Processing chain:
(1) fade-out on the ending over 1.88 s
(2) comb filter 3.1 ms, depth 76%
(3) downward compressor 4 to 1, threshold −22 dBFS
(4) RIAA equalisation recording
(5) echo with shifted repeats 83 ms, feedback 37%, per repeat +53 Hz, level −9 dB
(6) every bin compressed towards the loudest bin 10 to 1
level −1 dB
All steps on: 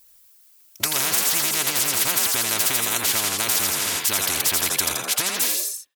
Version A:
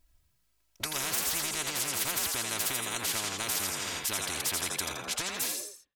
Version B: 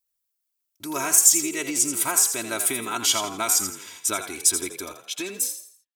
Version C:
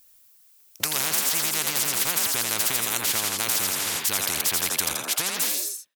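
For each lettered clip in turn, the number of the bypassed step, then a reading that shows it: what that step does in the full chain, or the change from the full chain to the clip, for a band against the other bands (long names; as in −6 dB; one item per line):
4, 8 kHz band −2.0 dB
6, 250 Hz band +7.5 dB
2, change in crest factor +2.0 dB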